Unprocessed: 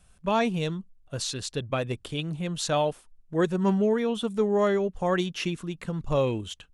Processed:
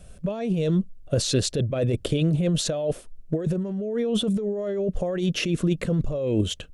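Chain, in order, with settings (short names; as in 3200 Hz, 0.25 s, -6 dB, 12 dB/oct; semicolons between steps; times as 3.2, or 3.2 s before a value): negative-ratio compressor -33 dBFS, ratio -1; resonant low shelf 720 Hz +6 dB, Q 3; gain +2 dB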